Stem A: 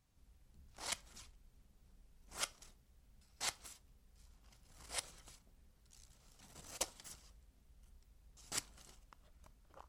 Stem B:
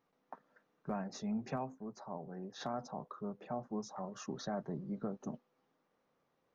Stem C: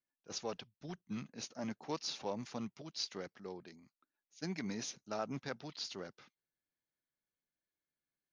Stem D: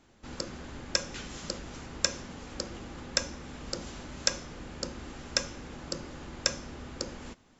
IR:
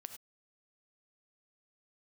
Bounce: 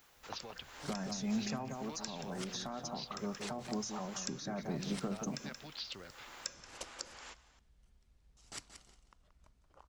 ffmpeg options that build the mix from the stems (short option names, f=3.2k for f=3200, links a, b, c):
-filter_complex "[0:a]lowpass=7.8k,volume=-3dB,asplit=2[a][b];[b]volume=-11dB[c];[1:a]bandreject=f=60:t=h:w=6,bandreject=f=120:t=h:w=6,volume=2dB,asplit=2[d][e];[e]volume=-6.5dB[f];[2:a]lowpass=f=3.5k:w=0.5412,lowpass=f=3.5k:w=1.3066,equalizer=f=86:w=1.8:g=13,acompressor=threshold=-46dB:ratio=6,volume=-2dB,asplit=2[g][h];[3:a]highpass=870,volume=-0.5dB,asplit=2[i][j];[j]volume=-23dB[k];[h]apad=whole_len=334792[l];[i][l]sidechaincompress=threshold=-60dB:ratio=8:attack=8.6:release=200[m];[d][g]amix=inputs=2:normalize=0,crystalizer=i=10:c=0,alimiter=level_in=2dB:limit=-24dB:level=0:latency=1:release=54,volume=-2dB,volume=0dB[n];[c][f][k]amix=inputs=3:normalize=0,aecho=0:1:178|356|534:1|0.16|0.0256[o];[a][m][n][o]amix=inputs=4:normalize=0,acrossover=split=330[p][q];[q]acompressor=threshold=-40dB:ratio=6[r];[p][r]amix=inputs=2:normalize=0"